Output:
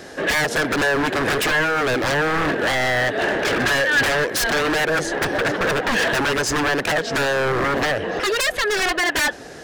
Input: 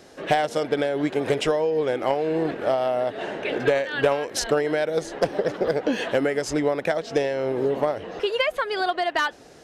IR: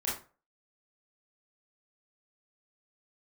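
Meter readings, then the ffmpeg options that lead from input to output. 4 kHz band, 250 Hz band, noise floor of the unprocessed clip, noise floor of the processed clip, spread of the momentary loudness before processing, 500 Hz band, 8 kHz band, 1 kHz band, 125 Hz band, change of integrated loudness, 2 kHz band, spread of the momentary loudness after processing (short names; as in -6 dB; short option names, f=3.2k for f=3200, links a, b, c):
+8.5 dB, +3.0 dB, -46 dBFS, -35 dBFS, 3 LU, 0.0 dB, +10.0 dB, +4.5 dB, +6.0 dB, +5.0 dB, +11.5 dB, 3 LU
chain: -af "acontrast=79,aeval=exprs='0.112*(abs(mod(val(0)/0.112+3,4)-2)-1)':c=same,equalizer=f=1.7k:t=o:w=0.28:g=8,volume=3dB"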